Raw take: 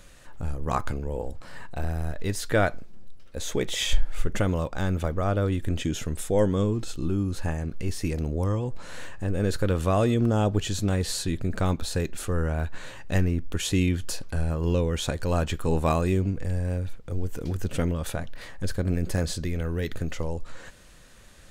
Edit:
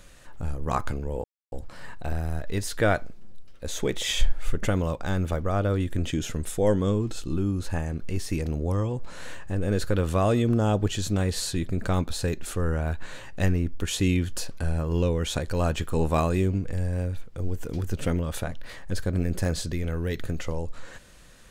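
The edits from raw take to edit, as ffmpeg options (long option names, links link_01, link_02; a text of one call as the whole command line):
ffmpeg -i in.wav -filter_complex "[0:a]asplit=2[link_01][link_02];[link_01]atrim=end=1.24,asetpts=PTS-STARTPTS,afade=type=out:start_time=1.236:duration=0.004:curve=hsin,apad=pad_dur=0.28[link_03];[link_02]atrim=start=1.24,asetpts=PTS-STARTPTS,afade=type=in:duration=0.004:curve=hsin[link_04];[link_03][link_04]concat=n=2:v=0:a=1" out.wav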